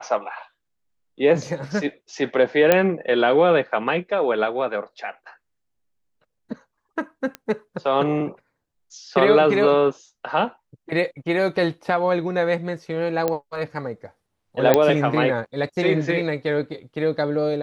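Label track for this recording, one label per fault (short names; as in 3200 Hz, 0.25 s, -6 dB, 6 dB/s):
2.720000	2.720000	pop -2 dBFS
7.350000	7.350000	pop -16 dBFS
13.280000	13.280000	pop -9 dBFS
14.740000	14.740000	pop -3 dBFS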